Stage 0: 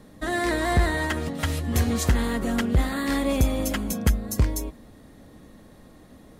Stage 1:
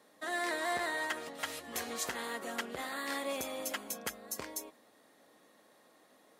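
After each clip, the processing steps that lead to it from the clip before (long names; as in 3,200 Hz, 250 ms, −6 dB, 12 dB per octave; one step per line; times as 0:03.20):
high-pass filter 540 Hz 12 dB per octave
level −7 dB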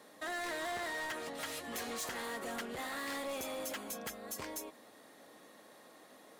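in parallel at 0 dB: downward compressor, threshold −45 dBFS, peak gain reduction 14 dB
on the sum: soft clipping −36 dBFS, distortion −8 dB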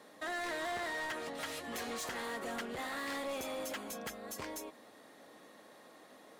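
high-shelf EQ 7,400 Hz −6 dB
level +1 dB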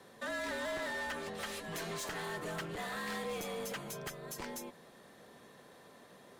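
frequency shifter −68 Hz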